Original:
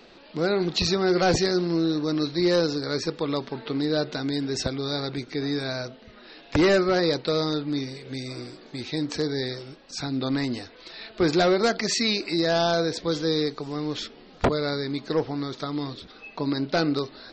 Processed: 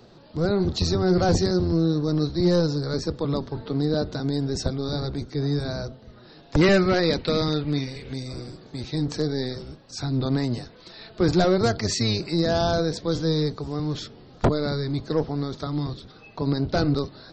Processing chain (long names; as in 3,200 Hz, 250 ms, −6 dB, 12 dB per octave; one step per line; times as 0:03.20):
sub-octave generator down 1 octave, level +2 dB
parametric band 2,400 Hz −11.5 dB 1.1 octaves, from 0:06.61 +3 dB, from 0:08.13 −7 dB